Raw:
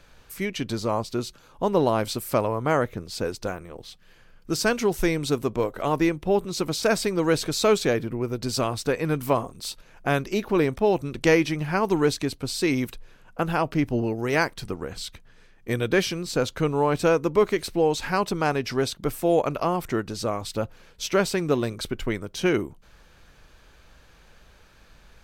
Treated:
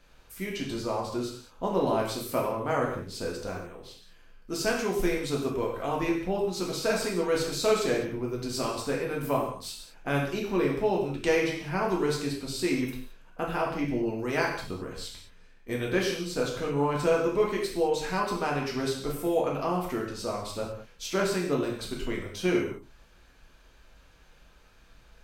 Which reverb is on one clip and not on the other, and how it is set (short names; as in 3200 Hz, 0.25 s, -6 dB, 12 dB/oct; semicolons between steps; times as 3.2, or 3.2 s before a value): non-linear reverb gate 0.24 s falling, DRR -2.5 dB; gain -8.5 dB